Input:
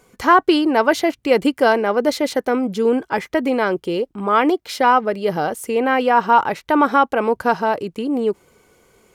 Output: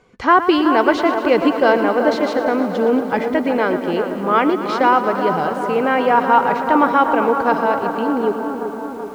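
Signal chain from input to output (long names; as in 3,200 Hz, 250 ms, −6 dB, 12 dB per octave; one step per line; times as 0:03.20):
low-pass filter 4,000 Hz 12 dB per octave
on a send: bucket-brigade delay 379 ms, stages 4,096, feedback 66%, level −8 dB
on the sum: feedback echo at a low word length 115 ms, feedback 80%, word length 7 bits, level −12.5 dB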